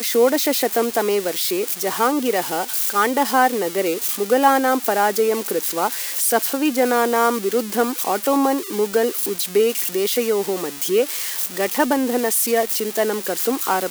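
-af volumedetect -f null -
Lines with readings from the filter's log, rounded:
mean_volume: -19.7 dB
max_volume: -2.6 dB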